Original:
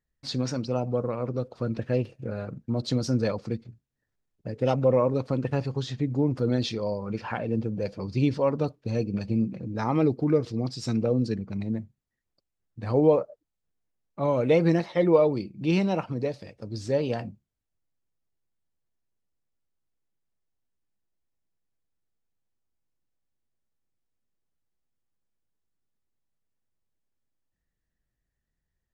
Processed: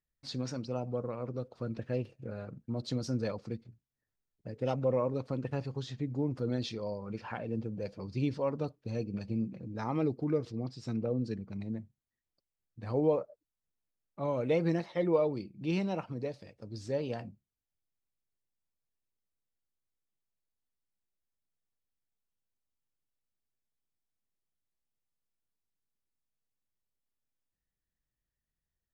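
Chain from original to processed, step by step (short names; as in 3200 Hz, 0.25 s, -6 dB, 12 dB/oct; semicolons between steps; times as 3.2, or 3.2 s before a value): 10.5–11.26 high shelf 5100 Hz -> 3500 Hz -11 dB; gain -8 dB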